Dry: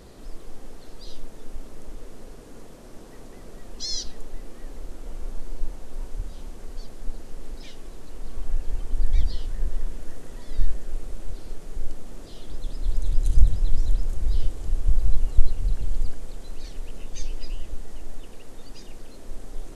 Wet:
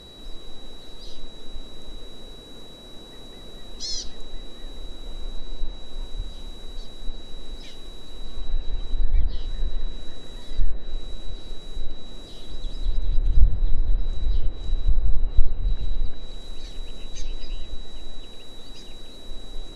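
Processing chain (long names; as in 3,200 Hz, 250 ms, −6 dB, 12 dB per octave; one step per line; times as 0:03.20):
steady tone 3,900 Hz −45 dBFS
treble cut that deepens with the level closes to 1,900 Hz, closed at −10.5 dBFS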